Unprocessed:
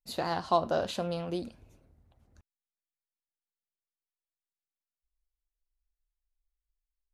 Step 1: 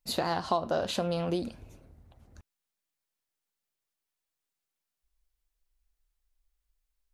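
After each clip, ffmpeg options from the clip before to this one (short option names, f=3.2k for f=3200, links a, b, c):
-af "acompressor=threshold=-35dB:ratio=3,volume=7.5dB"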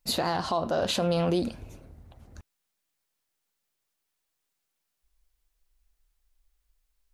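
-af "alimiter=limit=-23dB:level=0:latency=1:release=26,volume=6dB"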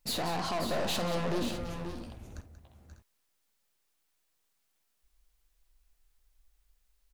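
-af "aeval=exprs='(tanh(44.7*val(0)+0.3)-tanh(0.3))/44.7':c=same,aecho=1:1:49|184|532|547|596|614:0.2|0.237|0.335|0.178|0.188|0.106,volume=2.5dB"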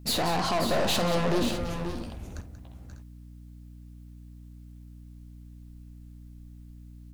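-af "aeval=exprs='val(0)+0.00282*(sin(2*PI*60*n/s)+sin(2*PI*2*60*n/s)/2+sin(2*PI*3*60*n/s)/3+sin(2*PI*4*60*n/s)/4+sin(2*PI*5*60*n/s)/5)':c=same,volume=6dB"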